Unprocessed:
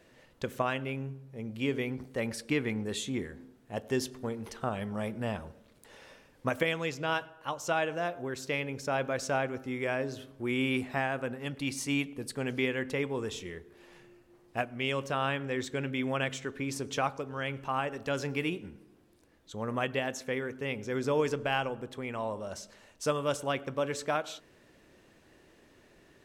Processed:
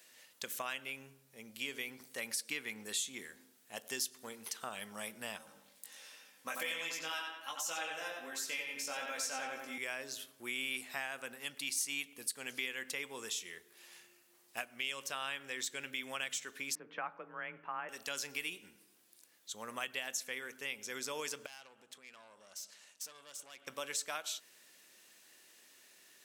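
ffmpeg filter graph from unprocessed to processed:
-filter_complex "[0:a]asettb=1/sr,asplit=3[a][b][c];[a]atrim=end=5.384[d];[b]atrim=start=5.38:end=9.78,asetpts=PTS-STARTPTS,afade=t=in:d=0.004:c=qsin,afade=t=out:st=4.396:d=0.004:c=qsin,aecho=1:1:3.8:0.43,atrim=end_sample=194040,asplit=2[e][f];[f]adelay=90,lowpass=f=3.5k:p=1,volume=-3dB,asplit=2[g][h];[h]adelay=90,lowpass=f=3.5k:p=1,volume=0.51,asplit=2[i][j];[j]adelay=90,lowpass=f=3.5k:p=1,volume=0.51,asplit=2[k][l];[l]adelay=90,lowpass=f=3.5k:p=1,volume=0.51,asplit=2[m][n];[n]adelay=90,lowpass=f=3.5k:p=1,volume=0.51,asplit=2[o][p];[p]adelay=90,lowpass=f=3.5k:p=1,volume=0.51,asplit=2[q][r];[r]adelay=90,lowpass=f=3.5k:p=1,volume=0.51[s];[e][g][i][k][m][o][q][s]amix=inputs=8:normalize=0,atrim=end_sample=194040,flanger=delay=18:depth=3:speed=1.3[t];[c]atrim=start=9.776[u];[d][t]acrossfade=d=0.004:c1=hsin:c2=qsin[v];[v][u]acrossfade=d=0.004:c1=qsin:c2=hsin,asettb=1/sr,asplit=3[w][x][y];[w]atrim=end=16.754[z];[x]atrim=start=16.75:end=17.89,asetpts=PTS-STARTPTS,afade=t=in:d=0.004:c=qsin,afade=t=out:st=1.136:d=0.004:c=qsin,lowpass=f=1.9k:w=0.5412,lowpass=f=1.9k:w=1.3066,afreqshift=25[aa];[y]atrim=start=17.886[ab];[z][aa]acrossfade=d=0.004:c1=hsin:c2=qsin[ac];[ac][ab]acrossfade=d=0.004:c1=qsin:c2=hsin,asettb=1/sr,asplit=3[ad][ae][af];[ad]atrim=end=21.464[ag];[ae]atrim=start=21.46:end=23.67,asetpts=PTS-STARTPTS,afade=t=in:d=0.004:c=qsin,afade=t=out:st=2.206:d=0.004:c=qsin,lowpass=9.2k,acompressor=threshold=-48dB:ratio=2.5:attack=3.2:release=140:knee=1:detection=peak,aeval=exprs='(tanh(141*val(0)+0.65)-tanh(0.65))/141':c=same[ah];[af]atrim=start=23.666[ai];[ag][ah]acrossfade=d=0.004:c1=hsin:c2=qsin[aj];[aj][ai]acrossfade=d=0.004:c1=qsin:c2=hsin,aderivative,acompressor=threshold=-49dB:ratio=2,equalizer=f=210:w=2:g=4.5,volume=10.5dB"

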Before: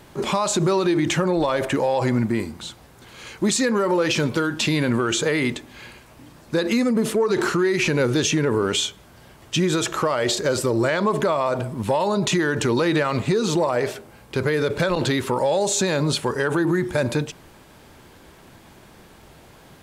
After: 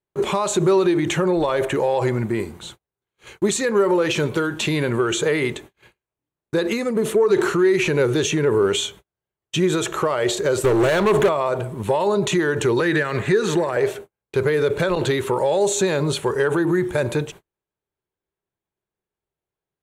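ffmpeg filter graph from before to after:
-filter_complex "[0:a]asettb=1/sr,asplit=3[a][b][c];[a]atrim=end=10.644[d];[b]atrim=start=10.64:end=11.29,asetpts=PTS-STARTPTS,afade=t=in:d=0.004:c=qsin,afade=t=out:st=0.646:d=0.004:c=qsin,acontrast=70,asoftclip=type=hard:threshold=-16dB[e];[c]atrim=start=11.286[f];[d][e]acrossfade=d=0.004:c1=hsin:c2=qsin[g];[g][f]acrossfade=d=0.004:c1=qsin:c2=hsin,asettb=1/sr,asplit=3[h][i][j];[h]atrim=end=12.804[k];[i]atrim=start=12.8:end=13.77,asetpts=PTS-STARTPTS,afade=t=in:d=0.004:c=qsin,afade=t=out:st=0.966:d=0.004:c=qsin,equalizer=f=1.7k:t=o:w=0.5:g=15,acrossover=split=480|3000[l][m][n];[m]acompressor=threshold=-23dB:ratio=6:attack=3.2:release=140:knee=2.83:detection=peak[o];[l][o][n]amix=inputs=3:normalize=0[p];[j]atrim=start=13.766[q];[k][p]acrossfade=d=0.004:c1=hsin:c2=qsin[r];[r][q]acrossfade=d=0.004:c1=qsin:c2=hsin,agate=range=-42dB:threshold=-38dB:ratio=16:detection=peak,equalizer=f=250:t=o:w=0.33:g=-8,equalizer=f=400:t=o:w=0.33:g=7,equalizer=f=5k:t=o:w=0.33:g=-10"

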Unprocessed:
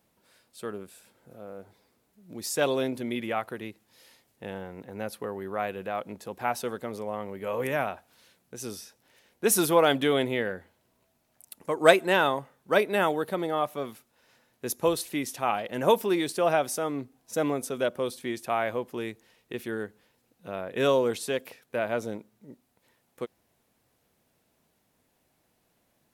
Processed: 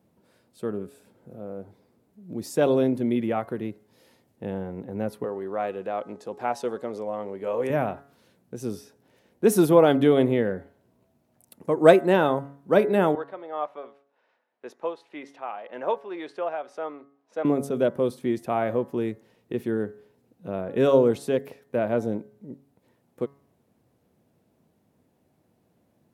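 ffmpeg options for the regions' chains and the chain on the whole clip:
-filter_complex "[0:a]asettb=1/sr,asplit=3[a][b][c];[a]atrim=end=5.244[d];[b]atrim=start=5.24:end=7.7,asetpts=PTS-STARTPTS,afade=t=in:d=0.004:c=qsin,afade=t=out:st=2.456:d=0.004:c=qsin,lowpass=7k,bass=f=250:g=-13,treble=f=4k:g=6[e];[c]atrim=start=7.696[f];[d][e]acrossfade=d=0.004:c1=hsin:c2=qsin[g];[g][f]acrossfade=d=0.004:c1=qsin:c2=hsin,asettb=1/sr,asplit=3[h][i][j];[h]atrim=end=13.154[k];[i]atrim=start=13.15:end=17.45,asetpts=PTS-STARTPTS,afade=t=in:d=0.004:c=qsin,afade=t=out:st=4.296:d=0.004:c=qsin,highpass=730,lowpass=2.8k,tremolo=f=1.9:d=0.54[l];[j]atrim=start=17.446[m];[k][l]acrossfade=d=0.004:c1=hsin:c2=qsin[n];[n][m]acrossfade=d=0.004:c1=qsin:c2=hsin,highpass=87,tiltshelf=f=840:g=8.5,bandreject=f=139.9:t=h:w=4,bandreject=f=279.8:t=h:w=4,bandreject=f=419.7:t=h:w=4,bandreject=f=559.6:t=h:w=4,bandreject=f=699.5:t=h:w=4,bandreject=f=839.4:t=h:w=4,bandreject=f=979.3:t=h:w=4,bandreject=f=1.1192k:t=h:w=4,bandreject=f=1.2591k:t=h:w=4,bandreject=f=1.399k:t=h:w=4,bandreject=f=1.5389k:t=h:w=4,bandreject=f=1.6788k:t=h:w=4,bandreject=f=1.8187k:t=h:w=4,bandreject=f=1.9586k:t=h:w=4,bandreject=f=2.0985k:t=h:w=4,volume=1.5dB"

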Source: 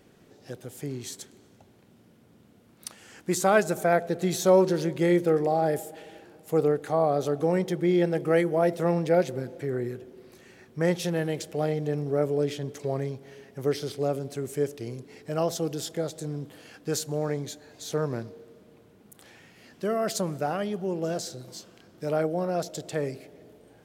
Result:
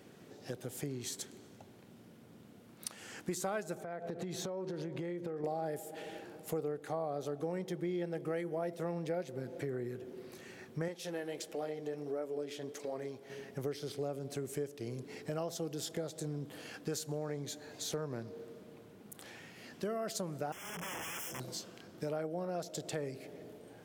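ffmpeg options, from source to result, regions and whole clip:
-filter_complex "[0:a]asettb=1/sr,asplit=3[a][b][c];[a]atrim=end=3.754[d];[b]atrim=start=3.75:end=5.44,asetpts=PTS-STARTPTS,afade=t=in:d=0.004:c=qsin,afade=t=out:st=1.686:d=0.004:c=qsin,lowpass=f=2.7k:p=1,acompressor=threshold=-34dB:ratio=8:attack=3.2:release=140:knee=1:detection=peak[e];[c]atrim=start=5.436[f];[d][e]acrossfade=d=0.004:c1=hsin:c2=qsin[g];[g][f]acrossfade=d=0.004:c1=qsin:c2=hsin,asettb=1/sr,asplit=3[h][i][j];[h]atrim=end=10.884[k];[i]atrim=start=10.88:end=13.3,asetpts=PTS-STARTPTS,afade=t=in:d=0.004:c=qsin,afade=t=out:st=2.416:d=0.004:c=qsin,flanger=delay=3.6:depth=5.5:regen=-50:speed=1.5:shape=sinusoidal,equalizer=f=140:t=o:w=1:g=-13[l];[j]atrim=start=13.296[m];[k][l]acrossfade=d=0.004:c1=hsin:c2=qsin[n];[n][m]acrossfade=d=0.004:c1=qsin:c2=hsin,asettb=1/sr,asplit=3[o][p][q];[o]atrim=end=20.524[r];[p]atrim=start=20.52:end=21.4,asetpts=PTS-STARTPTS,afade=t=in:d=0.004:c=qsin,afade=t=out:st=0.876:d=0.004:c=qsin,acrossover=split=570|3000[s][t][u];[s]acompressor=threshold=-35dB:ratio=4[v];[t]acompressor=threshold=-43dB:ratio=4[w];[u]acompressor=threshold=-38dB:ratio=4[x];[v][w][x]amix=inputs=3:normalize=0,aeval=exprs='(mod(70.8*val(0)+1,2)-1)/70.8':c=same,asuperstop=centerf=4200:order=20:qfactor=2.6[y];[q]atrim=start=21.396[z];[r][y]acrossfade=d=0.004:c1=hsin:c2=qsin[aa];[aa][z]acrossfade=d=0.004:c1=qsin:c2=hsin,highpass=94,acompressor=threshold=-38dB:ratio=4,volume=1dB"

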